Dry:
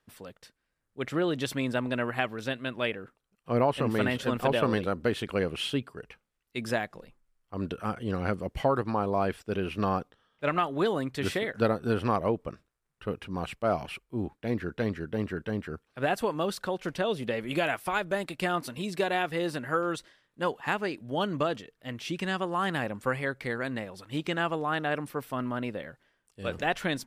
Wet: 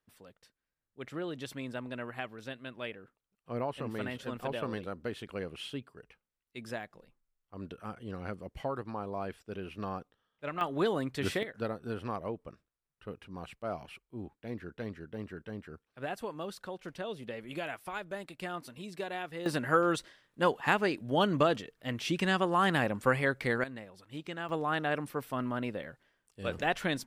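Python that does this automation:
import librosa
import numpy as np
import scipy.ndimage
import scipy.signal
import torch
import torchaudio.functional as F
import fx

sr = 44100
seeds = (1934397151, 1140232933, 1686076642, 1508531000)

y = fx.gain(x, sr, db=fx.steps((0.0, -10.0), (10.61, -2.5), (11.43, -10.0), (19.46, 2.0), (23.64, -10.0), (24.49, -2.0)))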